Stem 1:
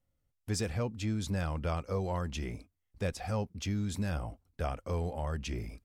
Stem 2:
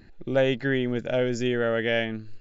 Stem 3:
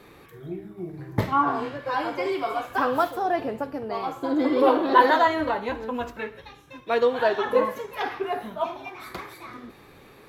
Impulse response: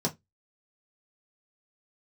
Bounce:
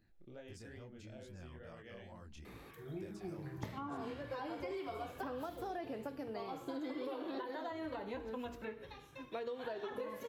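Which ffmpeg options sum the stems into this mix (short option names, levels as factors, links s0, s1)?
-filter_complex "[0:a]volume=0.376[s0];[1:a]volume=0.133[s1];[2:a]acompressor=threshold=0.0794:ratio=6,bandreject=f=59.03:t=h:w=4,bandreject=f=118.06:t=h:w=4,bandreject=f=177.09:t=h:w=4,bandreject=f=236.12:t=h:w=4,bandreject=f=295.15:t=h:w=4,bandreject=f=354.18:t=h:w=4,bandreject=f=413.21:t=h:w=4,bandreject=f=472.24:t=h:w=4,adelay=2450,volume=0.531[s2];[s0][s1]amix=inputs=2:normalize=0,flanger=delay=18:depth=7.7:speed=2.3,acompressor=threshold=0.00251:ratio=3,volume=1[s3];[s2][s3]amix=inputs=2:normalize=0,acrossover=split=650|1800[s4][s5][s6];[s4]acompressor=threshold=0.00794:ratio=4[s7];[s5]acompressor=threshold=0.00158:ratio=4[s8];[s6]acompressor=threshold=0.00158:ratio=4[s9];[s7][s8][s9]amix=inputs=3:normalize=0"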